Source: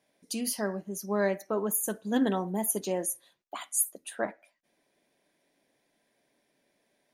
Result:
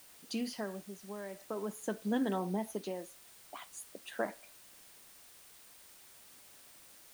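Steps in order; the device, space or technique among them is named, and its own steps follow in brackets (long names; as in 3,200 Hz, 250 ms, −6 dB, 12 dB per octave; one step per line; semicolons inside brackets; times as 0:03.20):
medium wave at night (band-pass filter 120–4,100 Hz; downward compressor, threshold −30 dBFS, peak gain reduction 8.5 dB; amplitude tremolo 0.45 Hz, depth 73%; steady tone 9,000 Hz −66 dBFS; white noise bed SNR 17 dB)
0:02.40–0:02.95: notch filter 7,200 Hz, Q 9
level +1 dB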